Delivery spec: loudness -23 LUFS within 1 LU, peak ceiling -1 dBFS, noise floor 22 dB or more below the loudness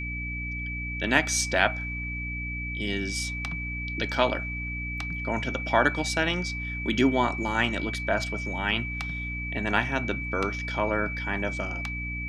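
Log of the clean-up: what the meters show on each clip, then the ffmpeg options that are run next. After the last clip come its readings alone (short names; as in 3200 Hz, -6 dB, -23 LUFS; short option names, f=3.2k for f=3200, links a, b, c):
hum 60 Hz; harmonics up to 300 Hz; hum level -33 dBFS; steady tone 2300 Hz; tone level -33 dBFS; loudness -27.5 LUFS; peak -4.0 dBFS; loudness target -23.0 LUFS
-> -af "bandreject=f=60:t=h:w=4,bandreject=f=120:t=h:w=4,bandreject=f=180:t=h:w=4,bandreject=f=240:t=h:w=4,bandreject=f=300:t=h:w=4"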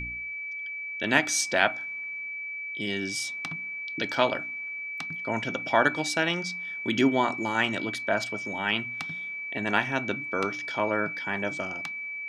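hum none; steady tone 2300 Hz; tone level -33 dBFS
-> -af "bandreject=f=2.3k:w=30"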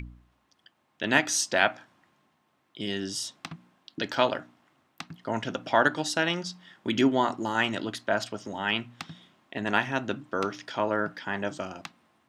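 steady tone none; loudness -28.5 LUFS; peak -4.5 dBFS; loudness target -23.0 LUFS
-> -af "volume=5.5dB,alimiter=limit=-1dB:level=0:latency=1"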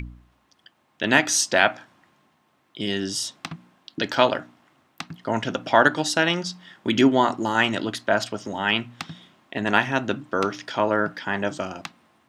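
loudness -23.0 LUFS; peak -1.0 dBFS; noise floor -66 dBFS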